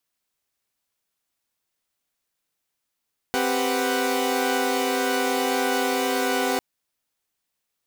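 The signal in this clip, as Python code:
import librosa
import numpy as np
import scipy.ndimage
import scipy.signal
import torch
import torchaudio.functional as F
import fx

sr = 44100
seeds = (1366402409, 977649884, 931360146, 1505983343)

y = fx.chord(sr, length_s=3.25, notes=(60, 67, 71, 78), wave='saw', level_db=-24.5)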